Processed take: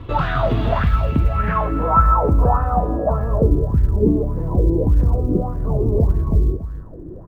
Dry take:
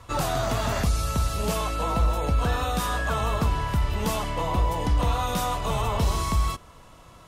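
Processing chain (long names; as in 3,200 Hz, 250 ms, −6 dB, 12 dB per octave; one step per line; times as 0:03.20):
bass and treble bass +14 dB, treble −11 dB
mains-hum notches 60/120/180 Hz
in parallel at +2.5 dB: downward compressor 16 to 1, threshold −30 dBFS, peak gain reduction 25 dB
on the sum: low-pass filter sweep 3,400 Hz → 380 Hz, 0:00.81–0:03.68
hum with harmonics 100 Hz, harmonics 19, −51 dBFS −7 dB per octave
floating-point word with a short mantissa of 6 bits
single-tap delay 284 ms −12.5 dB
auto-filter bell 1.7 Hz 300–1,700 Hz +18 dB
level −6 dB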